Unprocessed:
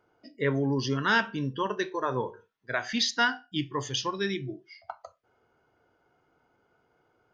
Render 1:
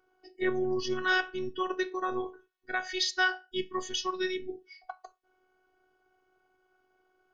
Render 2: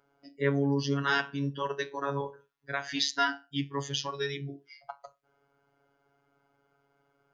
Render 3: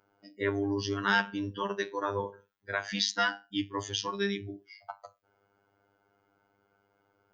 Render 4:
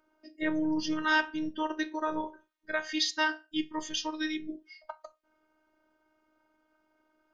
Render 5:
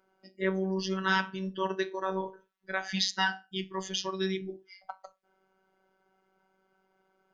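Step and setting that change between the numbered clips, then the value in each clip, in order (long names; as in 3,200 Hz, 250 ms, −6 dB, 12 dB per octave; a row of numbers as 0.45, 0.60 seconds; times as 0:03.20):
phases set to zero, frequency: 370, 140, 100, 310, 190 Hertz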